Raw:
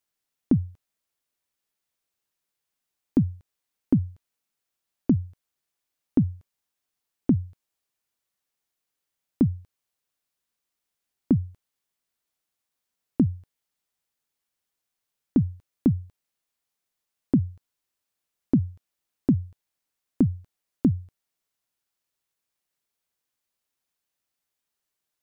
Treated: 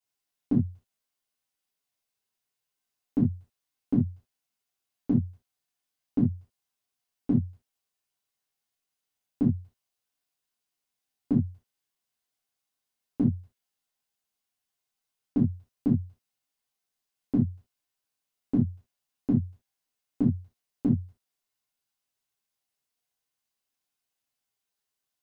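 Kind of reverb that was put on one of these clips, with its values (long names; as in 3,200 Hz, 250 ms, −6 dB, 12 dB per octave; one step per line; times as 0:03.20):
reverb whose tail is shaped and stops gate 100 ms falling, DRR −7.5 dB
level −10.5 dB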